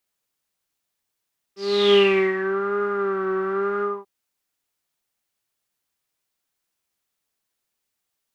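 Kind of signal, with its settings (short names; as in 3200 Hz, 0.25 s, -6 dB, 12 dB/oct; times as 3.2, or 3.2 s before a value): synth patch with vibrato G4, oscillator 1 triangle, oscillator 2 saw, interval 0 st, oscillator 2 level -13 dB, sub -16.5 dB, noise -17 dB, filter lowpass, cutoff 910 Hz, Q 11, filter envelope 2.5 oct, filter decay 0.99 s, filter sustain 25%, attack 0.379 s, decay 0.40 s, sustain -10.5 dB, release 0.23 s, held 2.26 s, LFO 0.99 Hz, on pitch 62 cents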